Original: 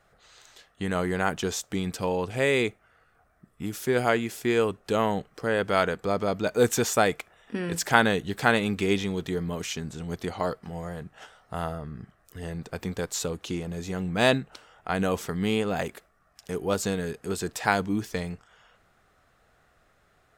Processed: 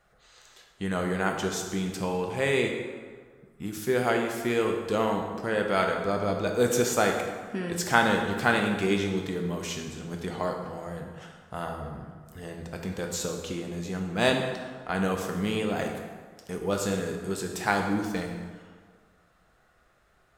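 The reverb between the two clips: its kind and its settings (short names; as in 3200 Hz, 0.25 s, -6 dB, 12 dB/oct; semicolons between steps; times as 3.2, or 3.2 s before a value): plate-style reverb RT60 1.6 s, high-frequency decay 0.65×, DRR 2 dB; gain -3 dB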